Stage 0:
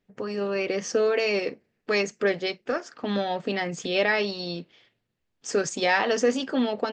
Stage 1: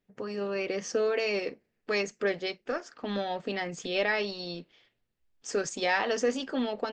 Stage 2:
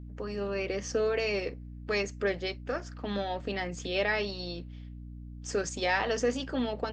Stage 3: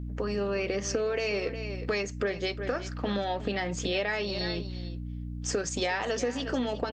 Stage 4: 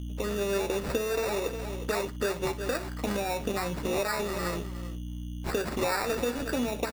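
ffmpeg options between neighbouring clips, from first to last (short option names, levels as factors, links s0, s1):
-af "asubboost=boost=4.5:cutoff=55,volume=0.596"
-af "aeval=exprs='val(0)+0.00891*(sin(2*PI*60*n/s)+sin(2*PI*2*60*n/s)/2+sin(2*PI*3*60*n/s)/3+sin(2*PI*4*60*n/s)/4+sin(2*PI*5*60*n/s)/5)':c=same,volume=0.891"
-af "aecho=1:1:360:0.168,acompressor=threshold=0.02:ratio=6,volume=2.37"
-filter_complex "[0:a]acrusher=samples=14:mix=1:aa=0.000001,asplit=2[s0][s1];[s1]aecho=0:1:13|61:0.299|0.178[s2];[s0][s2]amix=inputs=2:normalize=0"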